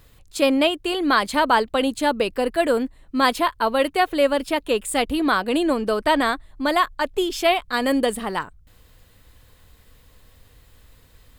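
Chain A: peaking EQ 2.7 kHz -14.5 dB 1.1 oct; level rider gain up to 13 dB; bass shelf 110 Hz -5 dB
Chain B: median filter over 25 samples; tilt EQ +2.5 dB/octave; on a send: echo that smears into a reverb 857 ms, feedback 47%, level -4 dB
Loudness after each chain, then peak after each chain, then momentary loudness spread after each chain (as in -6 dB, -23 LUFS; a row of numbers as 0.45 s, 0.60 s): -16.0 LUFS, -23.0 LUFS; -1.0 dBFS, -3.5 dBFS; 5 LU, 14 LU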